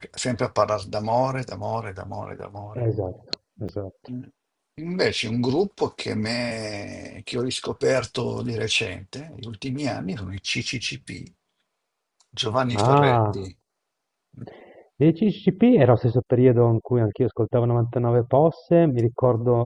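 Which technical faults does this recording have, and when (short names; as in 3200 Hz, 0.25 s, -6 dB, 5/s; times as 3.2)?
3.68–3.69 gap 8 ms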